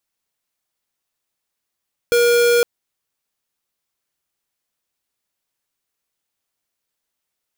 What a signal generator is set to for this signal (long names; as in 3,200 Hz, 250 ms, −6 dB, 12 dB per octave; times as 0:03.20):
tone square 476 Hz −14 dBFS 0.51 s